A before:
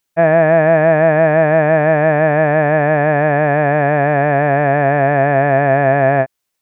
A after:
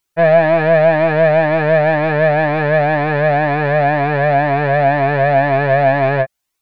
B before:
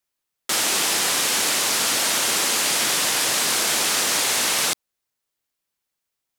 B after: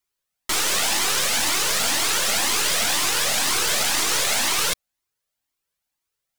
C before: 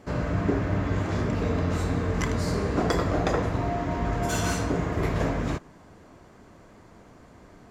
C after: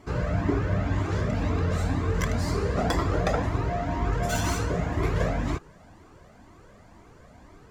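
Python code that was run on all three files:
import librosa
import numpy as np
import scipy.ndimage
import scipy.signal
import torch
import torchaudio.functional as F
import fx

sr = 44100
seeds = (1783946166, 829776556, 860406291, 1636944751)

y = fx.tracing_dist(x, sr, depth_ms=0.034)
y = fx.comb_cascade(y, sr, direction='rising', hz=2.0)
y = y * 10.0 ** (4.0 / 20.0)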